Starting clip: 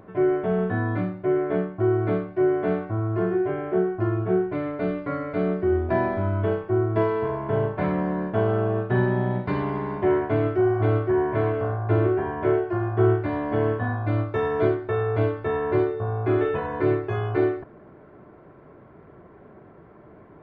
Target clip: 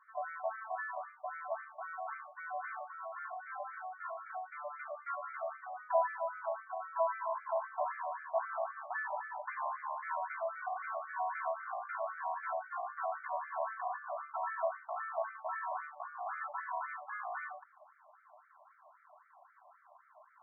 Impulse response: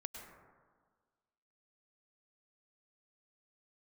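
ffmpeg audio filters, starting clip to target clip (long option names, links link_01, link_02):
-af "highpass=250,lowpass=2700,lowshelf=frequency=320:gain=11,afftfilt=real='re*between(b*sr/1024,820*pow(1700/820,0.5+0.5*sin(2*PI*3.8*pts/sr))/1.41,820*pow(1700/820,0.5+0.5*sin(2*PI*3.8*pts/sr))*1.41)':imag='im*between(b*sr/1024,820*pow(1700/820,0.5+0.5*sin(2*PI*3.8*pts/sr))/1.41,820*pow(1700/820,0.5+0.5*sin(2*PI*3.8*pts/sr))*1.41)':win_size=1024:overlap=0.75,volume=-4dB"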